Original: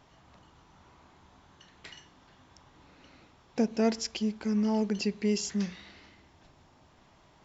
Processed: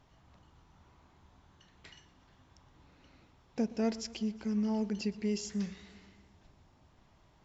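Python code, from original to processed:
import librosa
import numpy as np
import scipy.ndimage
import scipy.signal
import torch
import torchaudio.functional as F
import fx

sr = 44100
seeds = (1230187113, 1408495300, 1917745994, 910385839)

y = fx.low_shelf(x, sr, hz=130.0, db=9.5)
y = fx.echo_warbled(y, sr, ms=119, feedback_pct=66, rate_hz=2.8, cents=51, wet_db=-20.5)
y = y * librosa.db_to_amplitude(-7.0)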